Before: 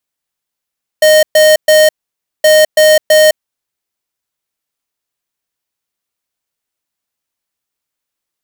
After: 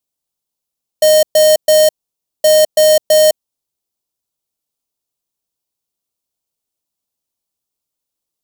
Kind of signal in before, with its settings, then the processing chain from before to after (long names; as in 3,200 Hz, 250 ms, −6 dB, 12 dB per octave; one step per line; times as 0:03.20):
beeps in groups square 618 Hz, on 0.21 s, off 0.12 s, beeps 3, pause 0.55 s, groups 2, −6 dBFS
parametric band 1,800 Hz −13.5 dB 1.2 octaves